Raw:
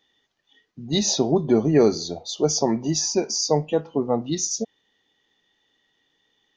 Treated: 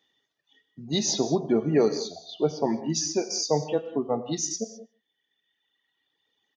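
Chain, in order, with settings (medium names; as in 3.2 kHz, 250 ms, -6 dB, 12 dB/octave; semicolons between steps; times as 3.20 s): high-pass 100 Hz; reverb removal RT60 1.8 s; 2.21–2.90 s: low-pass 3.5 kHz 24 dB/octave; echo from a far wall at 25 m, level -27 dB; gated-style reverb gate 230 ms flat, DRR 10 dB; trim -3.5 dB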